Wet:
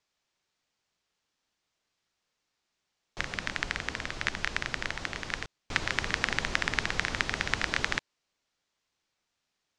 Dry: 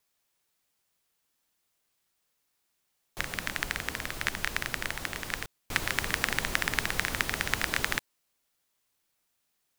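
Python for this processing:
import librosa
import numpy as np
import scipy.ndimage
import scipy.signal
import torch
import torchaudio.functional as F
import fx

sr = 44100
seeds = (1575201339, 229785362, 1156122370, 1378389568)

y = scipy.signal.sosfilt(scipy.signal.butter(4, 6500.0, 'lowpass', fs=sr, output='sos'), x)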